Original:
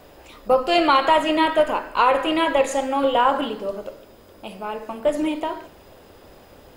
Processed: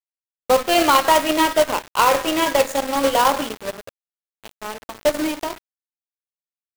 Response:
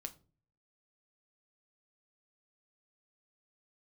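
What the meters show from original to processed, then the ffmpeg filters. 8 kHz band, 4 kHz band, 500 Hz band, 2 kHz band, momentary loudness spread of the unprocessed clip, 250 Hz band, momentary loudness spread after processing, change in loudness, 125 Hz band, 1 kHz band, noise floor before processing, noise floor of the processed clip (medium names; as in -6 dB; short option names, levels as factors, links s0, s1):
+12.0 dB, +3.5 dB, +1.0 dB, +2.0 dB, 17 LU, 0.0 dB, 16 LU, +2.0 dB, no reading, +1.0 dB, -49 dBFS, under -85 dBFS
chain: -af "acrusher=bits=2:mode=log:mix=0:aa=0.000001,aeval=exprs='sgn(val(0))*max(abs(val(0))-0.0316,0)':c=same,volume=1.33"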